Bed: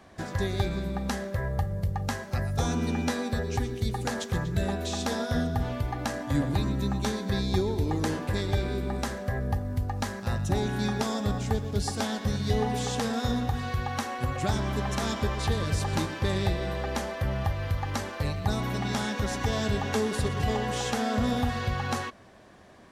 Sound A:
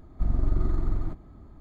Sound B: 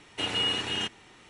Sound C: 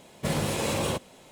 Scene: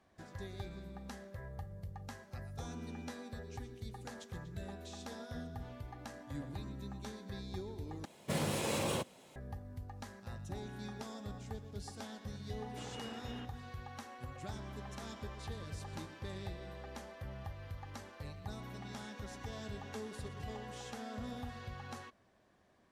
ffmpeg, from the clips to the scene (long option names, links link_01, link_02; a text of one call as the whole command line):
ffmpeg -i bed.wav -i cue0.wav -i cue1.wav -i cue2.wav -filter_complex "[0:a]volume=-17dB[link_01];[3:a]highpass=81[link_02];[2:a]lowpass=1700[link_03];[link_01]asplit=2[link_04][link_05];[link_04]atrim=end=8.054[link_06];[link_02]atrim=end=1.31,asetpts=PTS-STARTPTS,volume=-7dB[link_07];[link_05]atrim=start=9.356[link_08];[link_03]atrim=end=1.29,asetpts=PTS-STARTPTS,volume=-15.5dB,afade=type=in:duration=0.004:curve=hsin,afade=type=out:start_time=1.286:duration=0.004:curve=hsin,adelay=12580[link_09];[link_06][link_07]acrossfade=duration=0.004:curve1=hsin:curve2=hsin[link_10];[link_10][link_08]acrossfade=duration=0.004:curve1=hsin:curve2=hsin[link_11];[link_11][link_09]amix=inputs=2:normalize=0" out.wav